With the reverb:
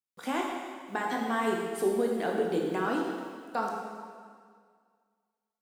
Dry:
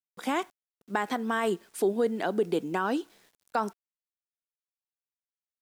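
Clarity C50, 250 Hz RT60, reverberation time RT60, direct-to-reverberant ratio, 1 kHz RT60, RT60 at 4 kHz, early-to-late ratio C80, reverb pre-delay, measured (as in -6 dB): 1.5 dB, 1.9 s, 1.9 s, -1.5 dB, 1.9 s, 1.8 s, 3.0 dB, 6 ms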